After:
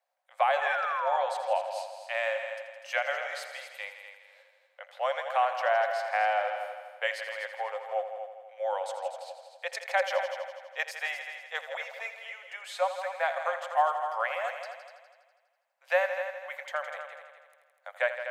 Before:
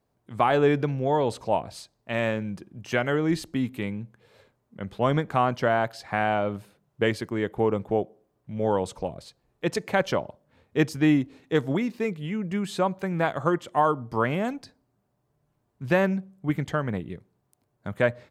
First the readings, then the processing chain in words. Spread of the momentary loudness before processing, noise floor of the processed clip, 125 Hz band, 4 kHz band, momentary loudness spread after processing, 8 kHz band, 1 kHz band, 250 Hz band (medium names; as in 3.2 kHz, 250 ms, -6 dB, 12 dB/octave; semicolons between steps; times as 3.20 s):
16 LU, -69 dBFS, under -40 dB, -2.0 dB, 14 LU, -4.5 dB, -1.0 dB, under -40 dB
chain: rippled Chebyshev high-pass 520 Hz, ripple 6 dB; painted sound fall, 0.61–1.22 s, 730–1800 Hz -32 dBFS; multi-head delay 82 ms, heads all three, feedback 45%, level -12 dB